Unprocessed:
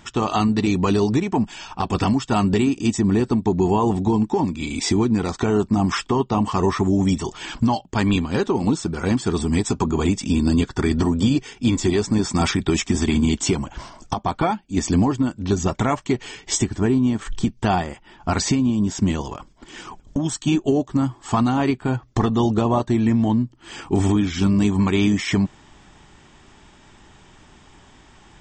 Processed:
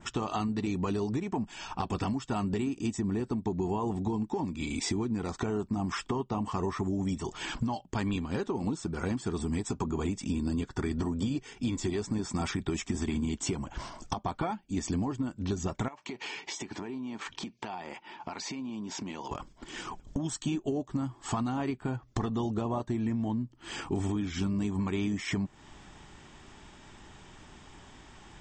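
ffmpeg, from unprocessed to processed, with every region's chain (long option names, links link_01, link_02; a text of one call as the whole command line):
ffmpeg -i in.wav -filter_complex "[0:a]asettb=1/sr,asplit=3[link_01][link_02][link_03];[link_01]atrim=end=15.884[link_04];[link_02]atrim=start=15.88:end=19.31,asetpts=PTS-STARTPTS,afade=type=in:duration=0.004:curve=qsin,afade=type=out:start_time=3.426:duration=0.004:curve=qsin,highpass=230,equalizer=frequency=910:width_type=q:width=4:gain=8,equalizer=frequency=2400:width_type=q:width=4:gain=7,equalizer=frequency=4300:width_type=q:width=4:gain=3,lowpass=frequency=6700:width=0.5412,lowpass=frequency=6700:width=1.3066,acompressor=threshold=-31dB:ratio=20:attack=3.2:release=140:knee=1:detection=peak[link_05];[link_03]atrim=start=19.306[link_06];[link_04][link_05]acrossfade=duration=0.004:curve1=hsin:curve2=qsin[link_07];[link_07][link_06]acrossfade=duration=0.004:curve1=qsin:curve2=hsin,adynamicequalizer=threshold=0.00794:dfrequency=4000:dqfactor=0.92:tfrequency=4000:tqfactor=0.92:attack=5:release=100:ratio=0.375:range=2:mode=cutabove:tftype=bell,acompressor=threshold=-29dB:ratio=3,volume=-2.5dB" out.wav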